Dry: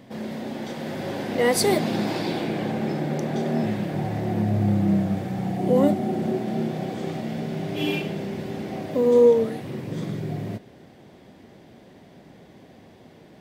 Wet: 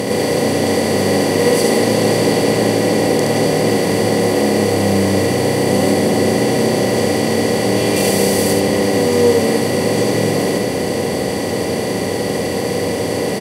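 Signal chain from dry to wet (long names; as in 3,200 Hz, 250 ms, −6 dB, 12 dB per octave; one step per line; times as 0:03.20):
compressor on every frequency bin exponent 0.2
0:07.96–0:08.53: high-shelf EQ 6,200 Hz +11 dB
on a send: single-tap delay 71 ms −3.5 dB
on the sum: level −3 dB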